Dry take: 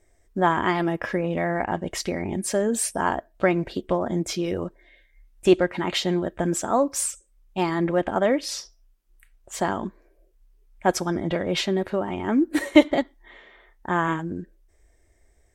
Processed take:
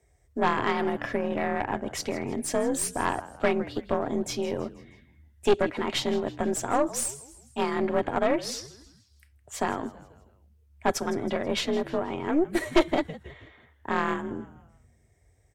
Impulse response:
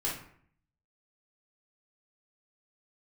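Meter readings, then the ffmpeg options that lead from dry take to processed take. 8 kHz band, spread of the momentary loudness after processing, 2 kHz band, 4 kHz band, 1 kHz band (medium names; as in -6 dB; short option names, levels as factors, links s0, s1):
-3.5 dB, 12 LU, -3.5 dB, -3.5 dB, -2.5 dB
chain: -filter_complex "[0:a]asplit=5[s0][s1][s2][s3][s4];[s1]adelay=161,afreqshift=-91,volume=0.141[s5];[s2]adelay=322,afreqshift=-182,volume=0.0661[s6];[s3]adelay=483,afreqshift=-273,volume=0.0313[s7];[s4]adelay=644,afreqshift=-364,volume=0.0146[s8];[s0][s5][s6][s7][s8]amix=inputs=5:normalize=0,afreqshift=41,aeval=exprs='(tanh(5.01*val(0)+0.65)-tanh(0.65))/5.01':c=same"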